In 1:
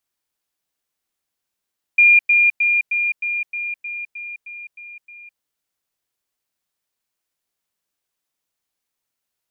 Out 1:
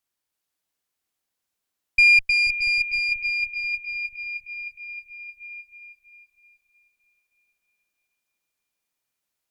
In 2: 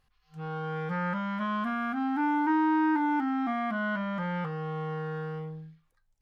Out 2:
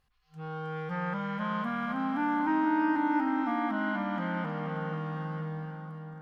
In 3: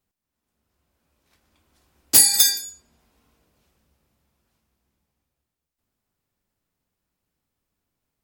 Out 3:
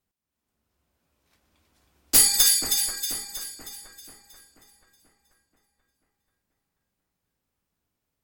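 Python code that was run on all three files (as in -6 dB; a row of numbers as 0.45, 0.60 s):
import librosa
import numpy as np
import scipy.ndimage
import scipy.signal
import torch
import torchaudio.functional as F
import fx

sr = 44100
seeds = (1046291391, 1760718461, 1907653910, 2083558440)

y = fx.tube_stage(x, sr, drive_db=7.0, bias=0.55)
y = fx.echo_split(y, sr, split_hz=1900.0, low_ms=485, high_ms=317, feedback_pct=52, wet_db=-5.5)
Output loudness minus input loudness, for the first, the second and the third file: -4.5, -1.5, -4.5 LU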